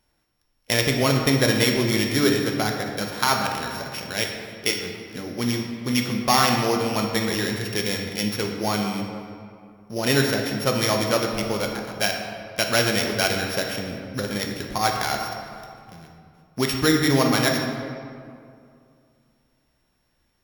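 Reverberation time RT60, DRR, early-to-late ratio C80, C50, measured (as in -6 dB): 2.4 s, 1.5 dB, 5.0 dB, 4.0 dB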